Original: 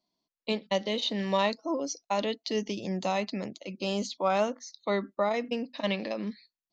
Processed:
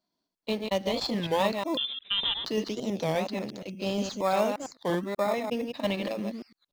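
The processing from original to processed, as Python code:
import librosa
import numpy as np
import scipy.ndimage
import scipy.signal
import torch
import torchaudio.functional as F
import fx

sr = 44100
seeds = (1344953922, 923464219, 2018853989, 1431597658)

p1 = fx.reverse_delay(x, sr, ms=117, wet_db=-5.0)
p2 = fx.sample_hold(p1, sr, seeds[0], rate_hz=3000.0, jitter_pct=0)
p3 = p1 + F.gain(torch.from_numpy(p2), -10.0).numpy()
p4 = fx.freq_invert(p3, sr, carrier_hz=3800, at=(1.77, 2.45))
p5 = fx.record_warp(p4, sr, rpm=33.33, depth_cents=250.0)
y = F.gain(torch.from_numpy(p5), -2.0).numpy()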